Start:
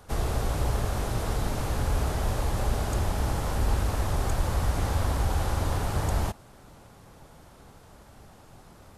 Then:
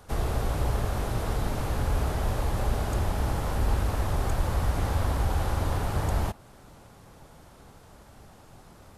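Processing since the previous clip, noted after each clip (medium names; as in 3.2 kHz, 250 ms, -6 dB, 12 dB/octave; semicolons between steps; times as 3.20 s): dynamic bell 7 kHz, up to -4 dB, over -52 dBFS, Q 0.74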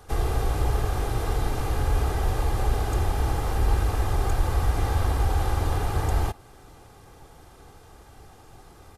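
comb 2.5 ms, depth 46%; trim +1 dB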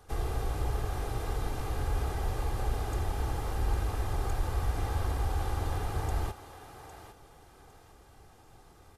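thinning echo 806 ms, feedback 29%, high-pass 360 Hz, level -10 dB; trim -7.5 dB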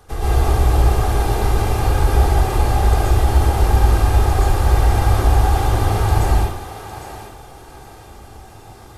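plate-style reverb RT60 0.65 s, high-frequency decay 0.9×, pre-delay 110 ms, DRR -7 dB; trim +8 dB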